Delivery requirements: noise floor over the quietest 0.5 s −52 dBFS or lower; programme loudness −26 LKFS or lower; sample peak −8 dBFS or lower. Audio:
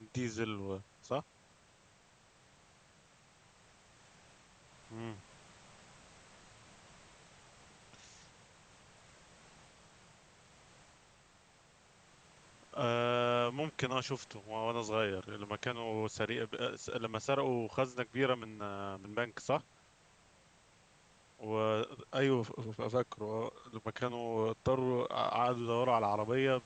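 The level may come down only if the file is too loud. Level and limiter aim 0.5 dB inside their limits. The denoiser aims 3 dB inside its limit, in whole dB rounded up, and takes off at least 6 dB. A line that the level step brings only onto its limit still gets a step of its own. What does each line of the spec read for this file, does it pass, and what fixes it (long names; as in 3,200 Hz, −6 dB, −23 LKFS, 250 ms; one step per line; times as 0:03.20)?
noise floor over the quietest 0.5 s −65 dBFS: in spec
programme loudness −36.0 LKFS: in spec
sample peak −18.0 dBFS: in spec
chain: no processing needed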